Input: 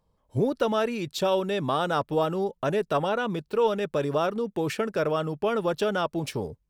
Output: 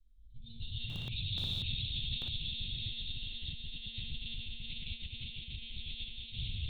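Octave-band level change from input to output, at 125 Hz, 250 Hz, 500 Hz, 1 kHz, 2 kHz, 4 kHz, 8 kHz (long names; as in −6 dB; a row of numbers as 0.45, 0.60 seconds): −7.5 dB, −23.0 dB, below −40 dB, below −35 dB, −14.0 dB, +1.5 dB, below −20 dB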